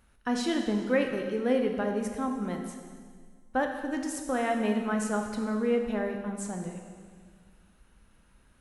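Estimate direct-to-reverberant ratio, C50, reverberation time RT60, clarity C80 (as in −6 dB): 3.0 dB, 5.0 dB, 1.8 s, 6.5 dB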